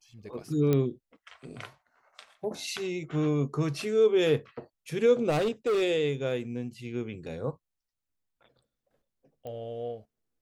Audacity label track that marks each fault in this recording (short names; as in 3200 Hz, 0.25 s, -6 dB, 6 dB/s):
0.730000	0.730000	pop -14 dBFS
5.290000	5.830000	clipped -23 dBFS
9.470000	9.470000	pop -29 dBFS